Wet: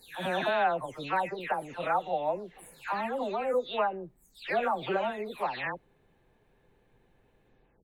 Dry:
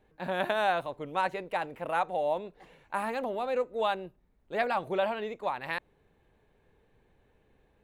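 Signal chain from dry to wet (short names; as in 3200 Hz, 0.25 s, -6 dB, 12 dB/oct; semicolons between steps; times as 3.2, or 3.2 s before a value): spectral delay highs early, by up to 0.355 s; gain +1.5 dB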